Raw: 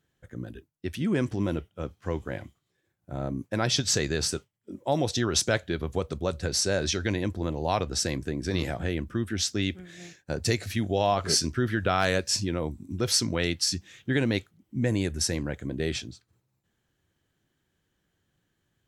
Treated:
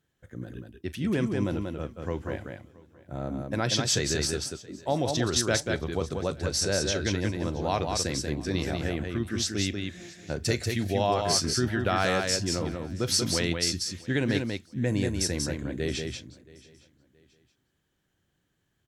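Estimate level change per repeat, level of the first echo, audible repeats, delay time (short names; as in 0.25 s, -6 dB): no steady repeat, -18.5 dB, 5, 40 ms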